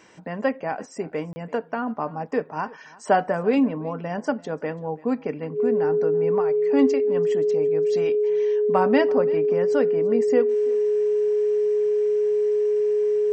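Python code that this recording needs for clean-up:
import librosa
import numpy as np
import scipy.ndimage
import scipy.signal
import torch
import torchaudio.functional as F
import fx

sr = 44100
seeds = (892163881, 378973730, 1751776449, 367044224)

y = fx.notch(x, sr, hz=420.0, q=30.0)
y = fx.fix_interpolate(y, sr, at_s=(1.33,), length_ms=30.0)
y = fx.fix_echo_inverse(y, sr, delay_ms=336, level_db=-22.0)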